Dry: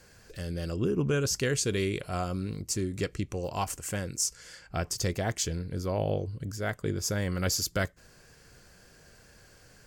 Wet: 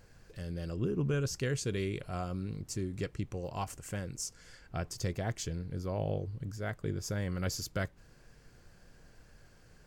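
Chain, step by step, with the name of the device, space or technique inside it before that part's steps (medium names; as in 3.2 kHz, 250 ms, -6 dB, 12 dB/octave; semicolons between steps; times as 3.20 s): car interior (peaking EQ 130 Hz +4.5 dB 0.9 oct; treble shelf 4.3 kHz -5.5 dB; brown noise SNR 21 dB); trim -6 dB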